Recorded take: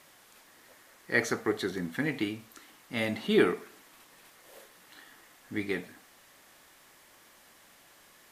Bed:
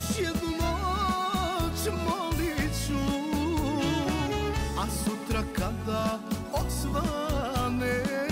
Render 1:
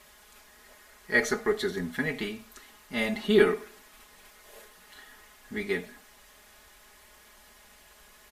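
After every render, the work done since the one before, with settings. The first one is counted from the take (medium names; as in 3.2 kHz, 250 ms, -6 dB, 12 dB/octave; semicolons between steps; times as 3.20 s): resonant low shelf 100 Hz +11.5 dB, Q 1.5; comb 4.8 ms, depth 87%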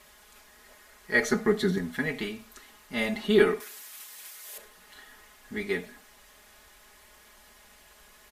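1.32–1.78 s: peaking EQ 180 Hz +14.5 dB 0.85 oct; 3.60–4.58 s: tilt EQ +4 dB/octave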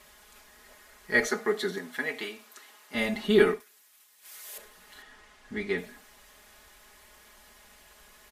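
1.27–2.95 s: high-pass 400 Hz; 3.50–4.34 s: dip -15 dB, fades 0.13 s; 5.02–5.78 s: distance through air 55 m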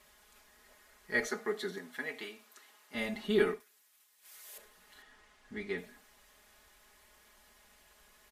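trim -7.5 dB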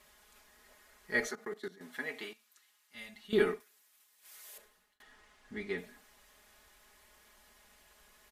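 1.31–1.81 s: level held to a coarse grid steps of 19 dB; 2.33–3.33 s: amplifier tone stack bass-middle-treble 5-5-5; 4.45–5.00 s: fade out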